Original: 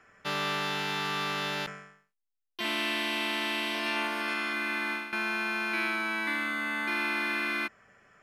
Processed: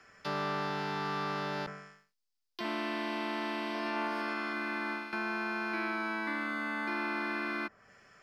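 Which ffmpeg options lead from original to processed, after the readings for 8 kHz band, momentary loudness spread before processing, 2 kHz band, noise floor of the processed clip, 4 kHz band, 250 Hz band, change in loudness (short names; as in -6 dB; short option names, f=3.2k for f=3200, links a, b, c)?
-13.0 dB, 4 LU, -6.0 dB, -82 dBFS, -10.5 dB, 0.0 dB, -5.0 dB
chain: -filter_complex "[0:a]equalizer=f=4.9k:t=o:w=0.66:g=11.5,acrossover=split=130|1600[a][b][c];[c]acompressor=threshold=-46dB:ratio=16[d];[a][b][d]amix=inputs=3:normalize=0"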